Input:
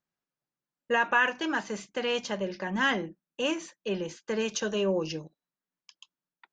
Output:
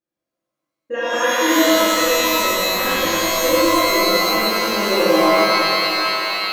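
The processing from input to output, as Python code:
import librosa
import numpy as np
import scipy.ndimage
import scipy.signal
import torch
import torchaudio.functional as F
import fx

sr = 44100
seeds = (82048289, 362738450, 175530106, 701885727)

p1 = fx.lpc_vocoder(x, sr, seeds[0], excitation='pitch_kept', order=8, at=(1.63, 3.52))
p2 = fx.small_body(p1, sr, hz=(330.0, 510.0), ring_ms=70, db=16)
p3 = p2 + fx.echo_single(p2, sr, ms=102, db=-4.5, dry=0)
p4 = fx.rev_shimmer(p3, sr, seeds[1], rt60_s=3.6, semitones=12, shimmer_db=-2, drr_db=-11.0)
y = F.gain(torch.from_numpy(p4), -9.0).numpy()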